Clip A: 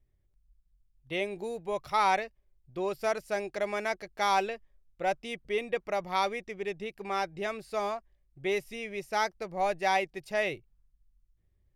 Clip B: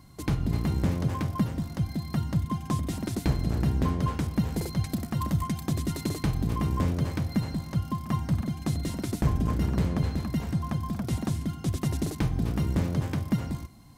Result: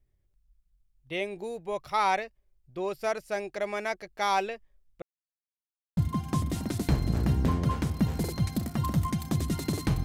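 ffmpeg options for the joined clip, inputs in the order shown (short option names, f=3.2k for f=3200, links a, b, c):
-filter_complex "[0:a]apad=whole_dur=10.04,atrim=end=10.04,asplit=2[a][b];[a]atrim=end=5.02,asetpts=PTS-STARTPTS,afade=t=out:st=5.016:d=0.004:c=hsin[c];[b]atrim=start=5.02:end=5.97,asetpts=PTS-STARTPTS,volume=0[d];[1:a]atrim=start=2.34:end=6.41,asetpts=PTS-STARTPTS,afade=t=in:d=0.004:c=hsin[e];[c][d][e]concat=n=3:v=0:a=1"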